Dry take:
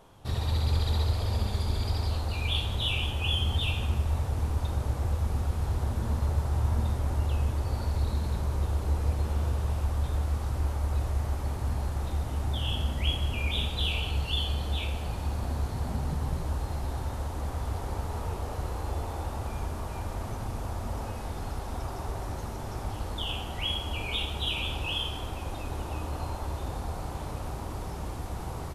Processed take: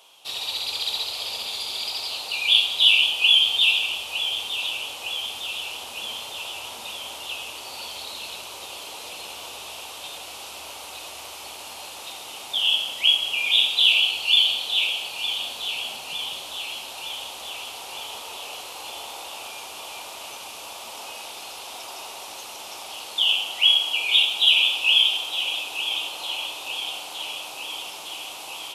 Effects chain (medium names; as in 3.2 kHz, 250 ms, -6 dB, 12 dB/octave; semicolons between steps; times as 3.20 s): high-pass 760 Hz 12 dB/octave; resonant high shelf 2.2 kHz +7.5 dB, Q 3; on a send: filtered feedback delay 910 ms, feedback 77%, low-pass 4.7 kHz, level -9 dB; on the sum: trim +3 dB